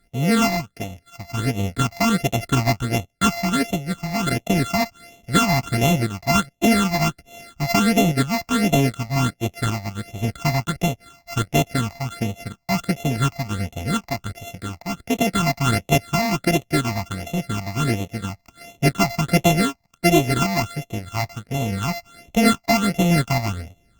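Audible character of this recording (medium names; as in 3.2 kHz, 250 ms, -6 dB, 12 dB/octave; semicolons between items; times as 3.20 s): a buzz of ramps at a fixed pitch in blocks of 64 samples; phasing stages 8, 1.4 Hz, lowest notch 420–1500 Hz; Opus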